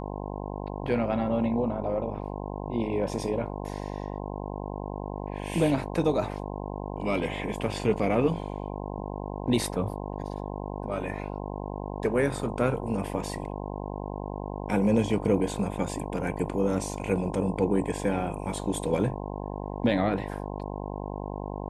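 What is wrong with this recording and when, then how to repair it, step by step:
buzz 50 Hz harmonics 21 -35 dBFS
13.35 gap 2.4 ms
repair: de-hum 50 Hz, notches 21; interpolate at 13.35, 2.4 ms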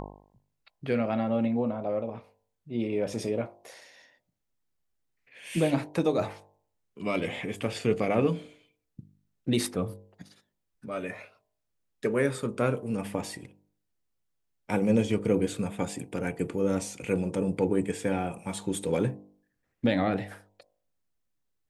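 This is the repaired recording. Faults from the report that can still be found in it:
none

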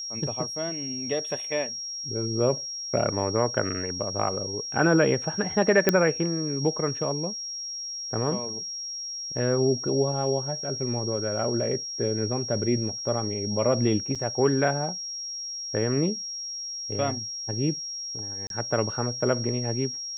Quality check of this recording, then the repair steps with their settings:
tone 5600 Hz -32 dBFS
5.89 pop -5 dBFS
14.15–14.16 gap 5.8 ms
18.47–18.5 gap 32 ms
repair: de-click; notch 5600 Hz, Q 30; interpolate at 14.15, 5.8 ms; interpolate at 18.47, 32 ms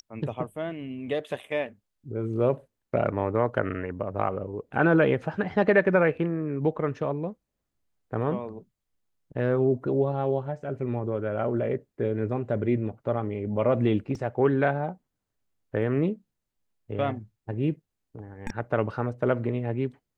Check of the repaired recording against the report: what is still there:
none

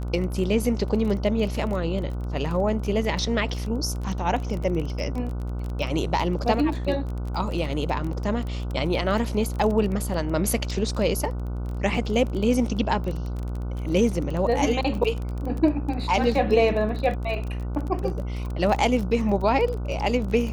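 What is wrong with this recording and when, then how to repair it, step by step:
buzz 60 Hz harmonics 25 -29 dBFS
crackle 20/s -29 dBFS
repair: de-click; de-hum 60 Hz, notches 25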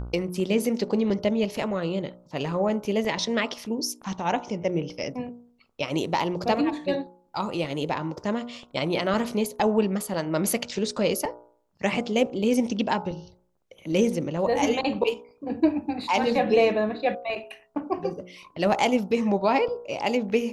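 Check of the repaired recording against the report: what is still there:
none

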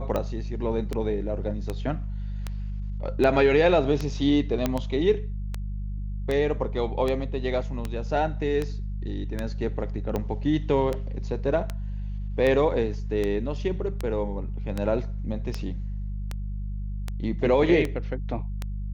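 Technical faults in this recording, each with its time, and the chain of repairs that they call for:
hum 50 Hz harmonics 4 -31 dBFS
tick 78 rpm -15 dBFS
4.66 pop -10 dBFS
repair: de-click; de-hum 50 Hz, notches 4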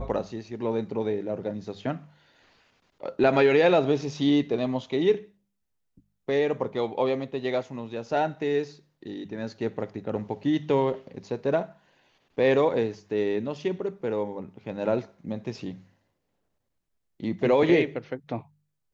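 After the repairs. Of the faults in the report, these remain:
none

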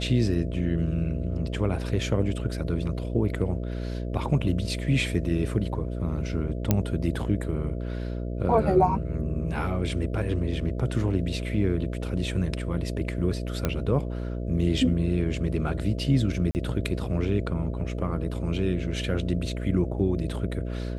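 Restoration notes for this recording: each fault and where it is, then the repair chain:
buzz 60 Hz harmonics 11 -31 dBFS
6.71 pop -7 dBFS
13.65 pop -11 dBFS
16.51–16.55 gap 39 ms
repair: de-click; de-hum 60 Hz, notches 11; interpolate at 16.51, 39 ms

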